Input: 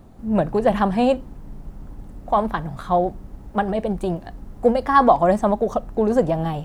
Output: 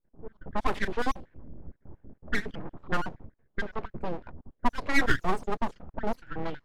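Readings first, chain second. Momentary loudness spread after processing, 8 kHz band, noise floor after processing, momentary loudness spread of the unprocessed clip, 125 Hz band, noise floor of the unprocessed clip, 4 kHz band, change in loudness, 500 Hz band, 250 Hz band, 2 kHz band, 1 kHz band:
23 LU, no reading, -74 dBFS, 12 LU, -12.0 dB, -42 dBFS, -2.5 dB, -12.0 dB, -17.0 dB, -13.5 dB, +0.5 dB, -13.5 dB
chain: random holes in the spectrogram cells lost 46%; full-wave rectifier; level-controlled noise filter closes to 610 Hz, open at -15.5 dBFS; trim -5.5 dB

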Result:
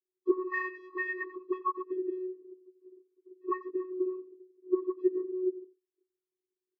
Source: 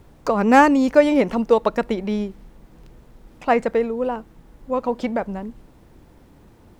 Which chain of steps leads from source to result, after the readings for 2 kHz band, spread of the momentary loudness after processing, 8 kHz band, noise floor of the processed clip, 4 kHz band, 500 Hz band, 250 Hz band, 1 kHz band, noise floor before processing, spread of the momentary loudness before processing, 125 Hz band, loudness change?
-11.0 dB, 13 LU, no reading, under -85 dBFS, under -30 dB, -13.0 dB, -15.0 dB, -18.0 dB, -51 dBFS, 16 LU, under -40 dB, -14.5 dB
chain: frequency axis rescaled in octaves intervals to 89%; gate -46 dBFS, range -39 dB; tone controls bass -1 dB, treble +3 dB; auto-wah 280–1800 Hz, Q 14, up, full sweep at -12.5 dBFS; vocoder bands 16, square 369 Hz; on a send: delay 89 ms -18.5 dB; on the sum: trim +7 dB

